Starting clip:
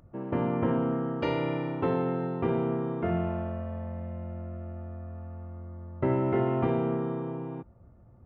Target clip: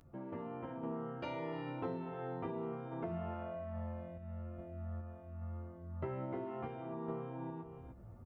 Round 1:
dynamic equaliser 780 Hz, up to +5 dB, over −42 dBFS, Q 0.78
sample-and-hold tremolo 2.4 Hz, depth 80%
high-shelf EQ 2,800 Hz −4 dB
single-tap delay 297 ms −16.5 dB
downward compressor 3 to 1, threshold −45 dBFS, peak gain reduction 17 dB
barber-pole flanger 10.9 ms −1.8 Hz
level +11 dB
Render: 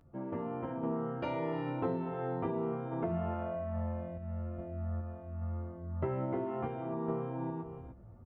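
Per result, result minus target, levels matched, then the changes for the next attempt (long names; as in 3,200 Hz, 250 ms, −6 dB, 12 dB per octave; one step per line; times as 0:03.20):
downward compressor: peak gain reduction −6.5 dB; 4,000 Hz band −5.0 dB
change: downward compressor 3 to 1, threshold −54.5 dBFS, peak gain reduction 23 dB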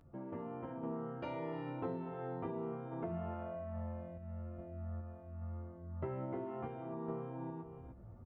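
4,000 Hz band −5.0 dB
change: high-shelf EQ 2,800 Hz +6 dB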